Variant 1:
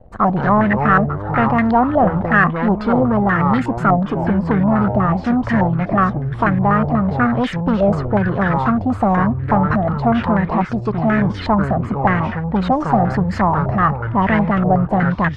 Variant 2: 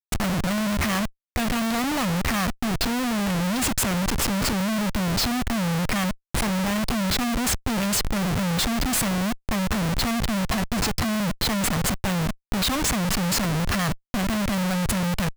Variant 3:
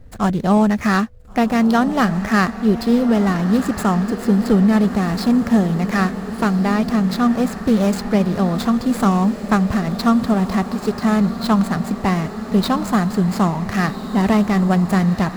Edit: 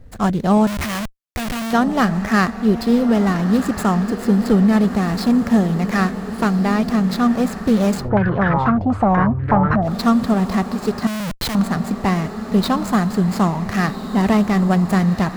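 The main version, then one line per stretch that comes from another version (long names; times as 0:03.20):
3
0:00.67–0:01.73: punch in from 2
0:08.03–0:09.88: punch in from 1, crossfade 0.16 s
0:11.07–0:11.55: punch in from 2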